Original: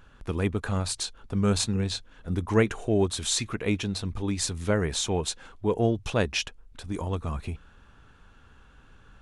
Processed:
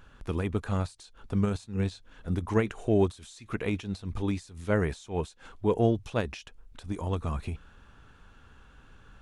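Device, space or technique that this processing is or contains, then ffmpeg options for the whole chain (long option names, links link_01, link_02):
de-esser from a sidechain: -filter_complex "[0:a]asplit=2[link_01][link_02];[link_02]highpass=frequency=6100:width=0.5412,highpass=frequency=6100:width=1.3066,apad=whole_len=406229[link_03];[link_01][link_03]sidechaincompress=threshold=-53dB:ratio=5:attack=1.7:release=94"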